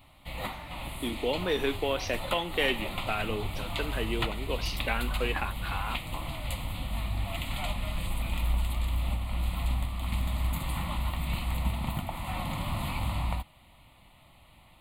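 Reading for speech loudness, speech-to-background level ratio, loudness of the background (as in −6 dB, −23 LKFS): −32.5 LKFS, 1.5 dB, −34.0 LKFS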